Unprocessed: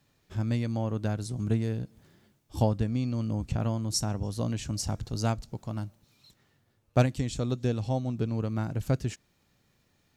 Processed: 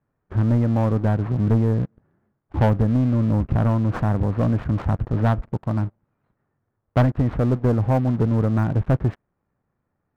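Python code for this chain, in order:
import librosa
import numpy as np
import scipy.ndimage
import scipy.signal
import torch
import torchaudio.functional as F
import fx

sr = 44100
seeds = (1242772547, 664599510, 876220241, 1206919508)

y = fx.cvsd(x, sr, bps=32000)
y = scipy.signal.sosfilt(scipy.signal.butter(4, 1500.0, 'lowpass', fs=sr, output='sos'), y)
y = fx.leveller(y, sr, passes=3)
y = y * librosa.db_to_amplitude(1.0)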